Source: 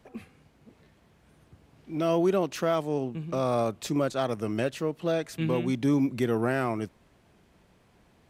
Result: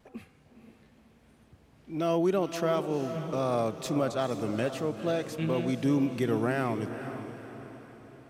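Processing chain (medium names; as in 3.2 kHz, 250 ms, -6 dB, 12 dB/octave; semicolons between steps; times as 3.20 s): wow and flutter 27 cents; echo that smears into a reverb 479 ms, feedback 48%, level -9.5 dB; trim -2 dB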